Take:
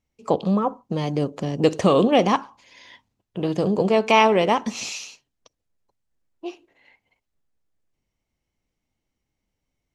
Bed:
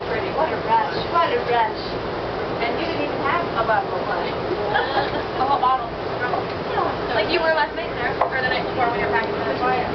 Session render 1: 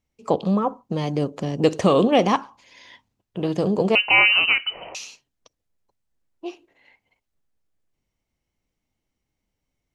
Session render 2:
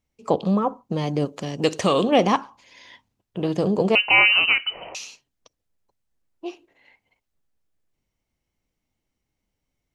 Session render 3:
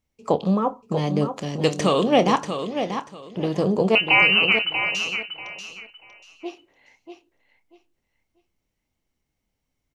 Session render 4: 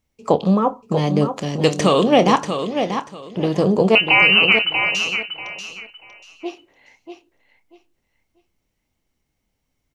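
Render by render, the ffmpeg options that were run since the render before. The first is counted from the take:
-filter_complex "[0:a]asettb=1/sr,asplit=3[a][b][c];[a]atrim=end=3.954[d];[b]atrim=start=3.95:end=4.95,asetpts=PTS-STARTPTS,afade=t=in:d=0.004:c=qsin,afade=t=out:st=0.996:d=0.004:c=qsin,lowpass=f=2.7k:t=q:w=0.5098,lowpass=f=2.7k:t=q:w=0.6013,lowpass=f=2.7k:t=q:w=0.9,lowpass=f=2.7k:t=q:w=2.563,afreqshift=-3200[e];[c]atrim=start=4.946[f];[d][e]acrossfade=d=0.004:c1=hsin:c2=qsin[g];[g][f]acrossfade=d=0.004:c1=qsin:c2=hsin"
-filter_complex "[0:a]asettb=1/sr,asplit=3[a][b][c];[a]atrim=end=1.254[d];[b]atrim=start=1.25:end=2.09,asetpts=PTS-STARTPTS,afade=t=in:d=0.004:c=qsin,afade=t=out:st=0.836:d=0.004:c=qsin,tiltshelf=f=1.2k:g=-4.5[e];[c]atrim=start=2.086[f];[d][e]acrossfade=d=0.004:c1=hsin:c2=qsin[g];[g][f]acrossfade=d=0.004:c1=qsin:c2=hsin"
-filter_complex "[0:a]asplit=2[a][b];[b]adelay=27,volume=-13.5dB[c];[a][c]amix=inputs=2:normalize=0,aecho=1:1:638|1276|1914:0.376|0.0864|0.0199"
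-af "volume=4.5dB,alimiter=limit=-2dB:level=0:latency=1"

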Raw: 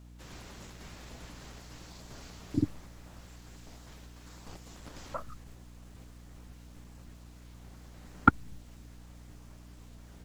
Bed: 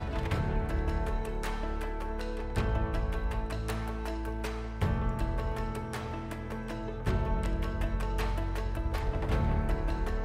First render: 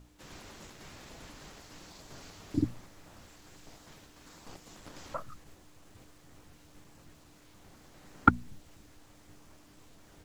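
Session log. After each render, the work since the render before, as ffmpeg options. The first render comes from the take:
-af "bandreject=f=60:t=h:w=6,bandreject=f=120:t=h:w=6,bandreject=f=180:t=h:w=6,bandreject=f=240:t=h:w=6"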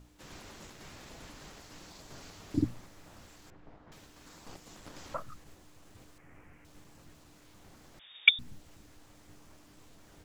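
-filter_complex "[0:a]asettb=1/sr,asplit=3[a][b][c];[a]atrim=end=3.504[d];[b]atrim=start=3.5:end=3.92,asetpts=PTS-STARTPTS,afade=t=in:d=0.004:c=qsin,afade=t=out:st=0.416:d=0.004:c=qsin,lowpass=1.5k[e];[c]atrim=start=3.916[f];[d][e]acrossfade=d=0.004:c1=hsin:c2=qsin[g];[g][f]acrossfade=d=0.004:c1=qsin:c2=hsin,asettb=1/sr,asplit=3[h][i][j];[h]atrim=end=6.184[k];[i]atrim=start=6.18:end=6.65,asetpts=PTS-STARTPTS,afade=t=in:d=0.004:c=qsin,afade=t=out:st=0.466:d=0.004:c=qsin,highshelf=f=2.9k:t=q:w=3:g=-9[l];[j]atrim=start=6.646[m];[k][l]acrossfade=d=0.004:c1=hsin:c2=qsin[n];[n][m]acrossfade=d=0.004:c1=qsin:c2=hsin,asettb=1/sr,asplit=3[o][p][q];[o]atrim=end=7.994[r];[p]atrim=start=7.99:end=8.39,asetpts=PTS-STARTPTS,afade=t=in:d=0.004:c=qsin,afade=t=out:st=0.396:d=0.004:c=qsin,lowpass=f=3.1k:t=q:w=0.5098,lowpass=f=3.1k:t=q:w=0.6013,lowpass=f=3.1k:t=q:w=0.9,lowpass=f=3.1k:t=q:w=2.563,afreqshift=-3700[s];[q]atrim=start=8.386[t];[r][s]acrossfade=d=0.004:c1=hsin:c2=qsin[u];[u][t]acrossfade=d=0.004:c1=qsin:c2=hsin"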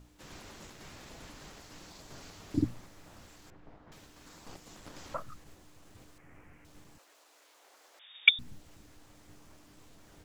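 -filter_complex "[0:a]asplit=3[a][b][c];[a]afade=t=out:st=6.97:d=0.02[d];[b]highpass=f=460:w=0.5412,highpass=f=460:w=1.3066,afade=t=in:st=6.97:d=0.02,afade=t=out:st=8.2:d=0.02[e];[c]afade=t=in:st=8.2:d=0.02[f];[d][e][f]amix=inputs=3:normalize=0"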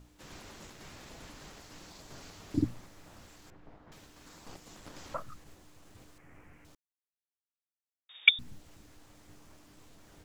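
-filter_complex "[0:a]asplit=3[a][b][c];[a]atrim=end=6.75,asetpts=PTS-STARTPTS,afade=t=out:st=6.746:d=0.004:c=hsin[d];[b]atrim=start=6.75:end=8.09,asetpts=PTS-STARTPTS,volume=0[e];[c]atrim=start=8.09,asetpts=PTS-STARTPTS,afade=t=in:d=0.004:c=hsin[f];[d][e][f]concat=n=3:v=0:a=1"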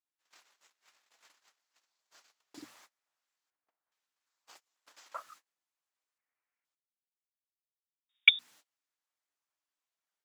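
-af "agate=range=-30dB:threshold=-46dB:ratio=16:detection=peak,highpass=1k"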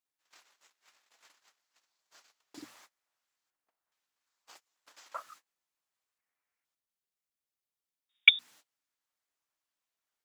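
-af "volume=1.5dB"

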